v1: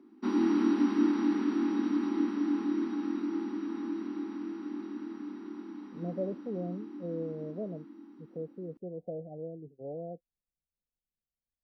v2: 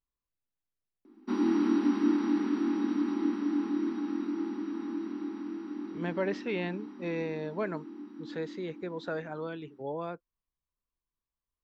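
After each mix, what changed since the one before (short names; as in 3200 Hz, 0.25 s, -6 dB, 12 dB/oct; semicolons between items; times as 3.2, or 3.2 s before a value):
speech: remove rippled Chebyshev low-pass 750 Hz, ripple 6 dB; background: entry +1.05 s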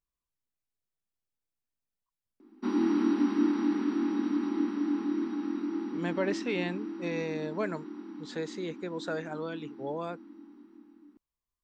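speech: remove air absorption 170 m; background: entry +1.35 s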